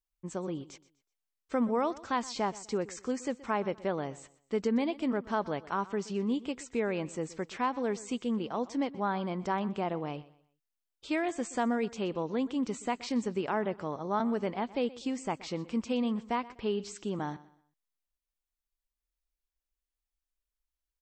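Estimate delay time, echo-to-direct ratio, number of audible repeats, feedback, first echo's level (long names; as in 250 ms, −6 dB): 124 ms, −18.5 dB, 2, 31%, −19.0 dB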